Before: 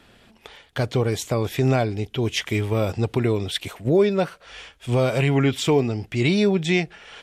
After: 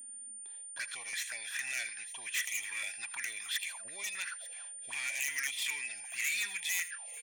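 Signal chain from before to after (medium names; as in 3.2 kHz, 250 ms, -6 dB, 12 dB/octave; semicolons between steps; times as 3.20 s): tracing distortion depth 0.1 ms; tilt shelf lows -6.5 dB, about 1.4 kHz; comb 1.2 ms, depth 61%; in parallel at 0 dB: peak limiter -14.5 dBFS, peak gain reduction 10.5 dB; on the sum: auto-wah 250–2000 Hz, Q 7.7, up, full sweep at -17.5 dBFS; saturation -32 dBFS, distortion -6 dB; whistle 9 kHz -57 dBFS; RIAA curve recording; multi-tap echo 82/897 ms -16.5/-19 dB; step-sequenced notch 5.3 Hz 480–1600 Hz; trim -1 dB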